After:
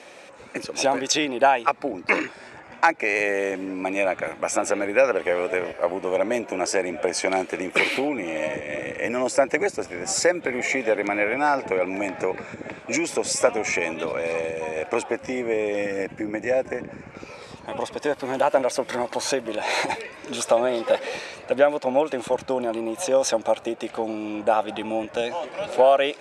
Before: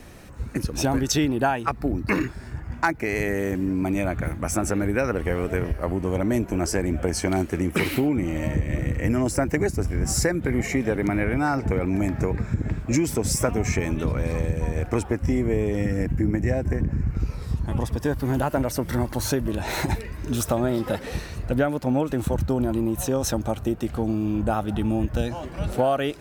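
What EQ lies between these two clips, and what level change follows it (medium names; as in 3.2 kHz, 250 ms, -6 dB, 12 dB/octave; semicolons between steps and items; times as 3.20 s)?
cabinet simulation 430–8900 Hz, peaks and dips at 550 Hz +8 dB, 840 Hz +4 dB, 2.4 kHz +7 dB, 3.5 kHz +4 dB; +2.0 dB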